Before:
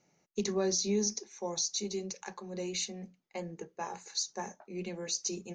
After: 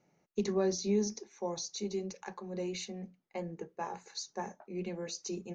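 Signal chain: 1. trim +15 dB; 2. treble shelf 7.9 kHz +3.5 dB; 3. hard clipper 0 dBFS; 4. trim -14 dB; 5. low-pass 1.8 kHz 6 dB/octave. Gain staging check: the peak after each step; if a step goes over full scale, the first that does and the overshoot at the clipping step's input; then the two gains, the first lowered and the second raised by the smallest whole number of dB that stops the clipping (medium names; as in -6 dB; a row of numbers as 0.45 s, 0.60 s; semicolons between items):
-4.0 dBFS, -3.0 dBFS, -3.0 dBFS, -17.0 dBFS, -20.0 dBFS; nothing clips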